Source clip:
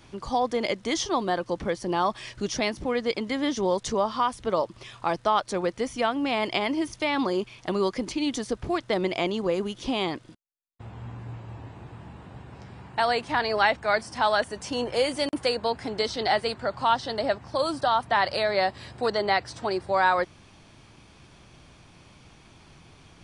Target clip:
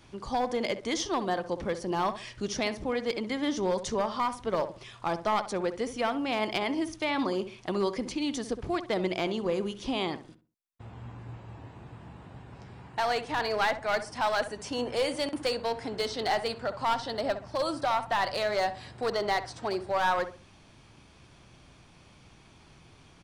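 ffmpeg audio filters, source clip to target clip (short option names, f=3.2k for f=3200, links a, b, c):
-filter_complex "[0:a]aeval=exprs='clip(val(0),-1,0.1)':c=same,asplit=2[a][b];[b]adelay=65,lowpass=f=1.5k:p=1,volume=-10.5dB,asplit=2[c][d];[d]adelay=65,lowpass=f=1.5k:p=1,volume=0.32,asplit=2[e][f];[f]adelay=65,lowpass=f=1.5k:p=1,volume=0.32[g];[a][c][e][g]amix=inputs=4:normalize=0,volume=-3.5dB"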